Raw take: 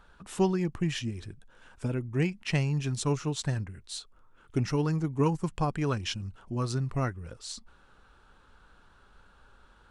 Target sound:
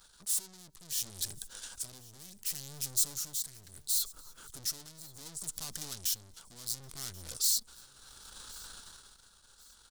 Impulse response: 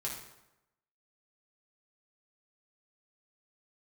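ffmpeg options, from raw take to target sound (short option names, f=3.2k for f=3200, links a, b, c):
-filter_complex "[0:a]agate=range=-10dB:threshold=-46dB:ratio=16:detection=peak,acompressor=threshold=-38dB:ratio=8,aeval=exprs='(tanh(794*val(0)+0.75)-tanh(0.75))/794':c=same,dynaudnorm=f=110:g=17:m=12dB,alimiter=level_in=25.5dB:limit=-24dB:level=0:latency=1:release=28,volume=-25.5dB,asettb=1/sr,asplit=3[a][b][c];[a]atrim=end=1.984[d];[b]atrim=start=1.98:end=4.63,asetpts=PTS-STARTPTS,afade=t=in:d=0.004:c=qsin,afade=t=out:st=2.646:d=0.004:c=qsin,equalizer=f=4k:w=0.57:g=-4[e];[c]atrim=start=4.626[f];[d][e]acrossfade=d=0.004:c1=hsin:c2=qsin[g];[g][f]acrossfade=d=0.004:c1=qsin:c2=hsin,aexciter=amount=4.1:drive=8.6:freq=3.7k,highshelf=f=2.1k:g=9.5,asplit=2[h][i];[i]adelay=285.7,volume=-24dB,highshelf=f=4k:g=-6.43[j];[h][j]amix=inputs=2:normalize=0,tremolo=f=0.7:d=0.63,aecho=1:1:1084|2168:0.0794|0.0262,volume=5dB"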